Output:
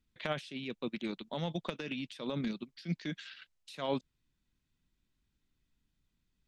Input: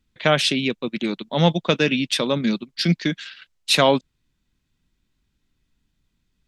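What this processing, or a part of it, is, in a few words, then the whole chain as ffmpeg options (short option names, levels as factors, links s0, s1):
de-esser from a sidechain: -filter_complex "[0:a]asplit=2[s0][s1];[s1]highpass=f=4800:w=0.5412,highpass=f=4800:w=1.3066,apad=whole_len=285610[s2];[s0][s2]sidechaincompress=threshold=0.00631:ratio=10:attack=1:release=84,volume=0.376"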